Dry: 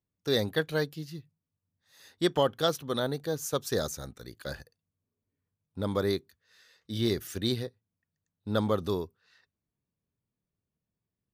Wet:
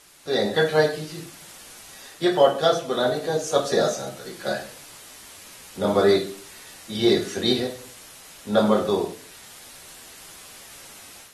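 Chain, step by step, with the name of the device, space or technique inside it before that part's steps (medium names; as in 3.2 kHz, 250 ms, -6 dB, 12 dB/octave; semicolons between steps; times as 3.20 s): high-pass 96 Hz 12 dB/octave; filmed off a television (band-pass 220–7000 Hz; peaking EQ 670 Hz +11 dB 0.25 oct; reverberation RT60 0.45 s, pre-delay 3 ms, DRR -2 dB; white noise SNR 20 dB; level rider gain up to 8.5 dB; trim -3 dB; AAC 32 kbps 44.1 kHz)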